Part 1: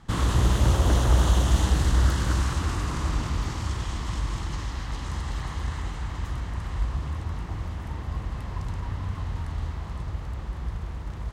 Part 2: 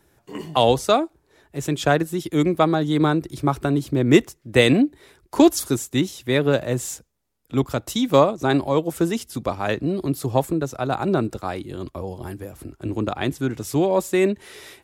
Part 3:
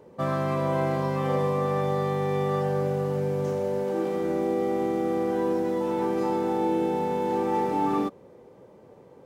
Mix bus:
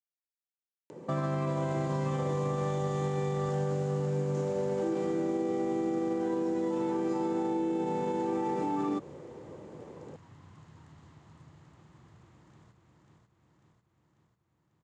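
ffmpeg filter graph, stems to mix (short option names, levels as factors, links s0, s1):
-filter_complex "[0:a]adelay=1400,volume=0.106,asplit=2[s0][s1];[s1]volume=0.473[s2];[2:a]alimiter=level_in=1.12:limit=0.0631:level=0:latency=1:release=75,volume=0.891,adelay=900,volume=1.33[s3];[s2]aecho=0:1:544|1088|1632|2176|2720:1|0.32|0.102|0.0328|0.0105[s4];[s0][s3][s4]amix=inputs=3:normalize=0,acompressor=mode=upward:threshold=0.00316:ratio=2.5,highpass=f=110:w=0.5412,highpass=f=110:w=1.3066,equalizer=f=150:t=q:w=4:g=6,equalizer=f=320:t=q:w=4:g=6,equalizer=f=7100:t=q:w=4:g=8,lowpass=f=8600:w=0.5412,lowpass=f=8600:w=1.3066,acompressor=threshold=0.0447:ratio=6"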